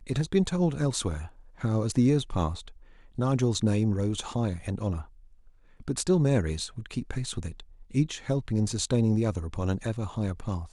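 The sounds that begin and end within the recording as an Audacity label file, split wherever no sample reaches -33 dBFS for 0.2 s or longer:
1.610000	2.680000	sound
3.190000	5.010000	sound
5.880000	7.600000	sound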